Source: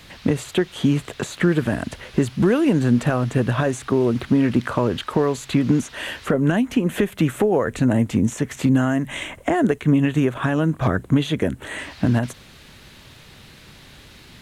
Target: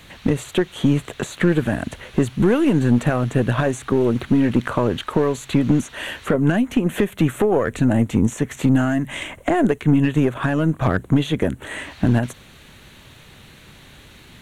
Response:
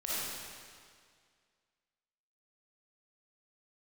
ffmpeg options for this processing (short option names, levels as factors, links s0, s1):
-af "equalizer=f=5000:w=5.4:g=-11,aeval=exprs='0.531*(cos(1*acos(clip(val(0)/0.531,-1,1)))-cos(1*PI/2))+0.0473*(cos(4*acos(clip(val(0)/0.531,-1,1)))-cos(4*PI/2))+0.0422*(cos(5*acos(clip(val(0)/0.531,-1,1)))-cos(5*PI/2))+0.0266*(cos(7*acos(clip(val(0)/0.531,-1,1)))-cos(7*PI/2))':c=same"